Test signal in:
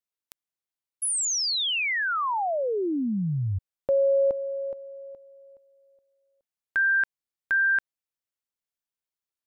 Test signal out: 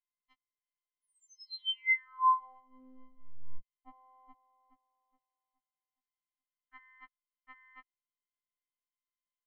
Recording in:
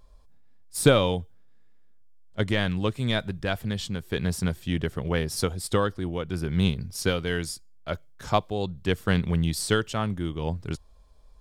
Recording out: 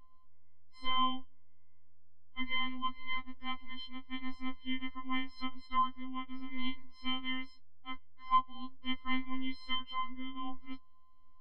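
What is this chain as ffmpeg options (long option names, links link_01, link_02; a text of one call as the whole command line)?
ffmpeg -i in.wav -af "afftfilt=real='hypot(re,im)*cos(PI*b)':imag='0':win_size=512:overlap=0.75,lowpass=frequency=2900:width=0.5412,lowpass=frequency=2900:width=1.3066,afftfilt=real='re*3.46*eq(mod(b,12),0)':imag='im*3.46*eq(mod(b,12),0)':win_size=2048:overlap=0.75,volume=-3.5dB" out.wav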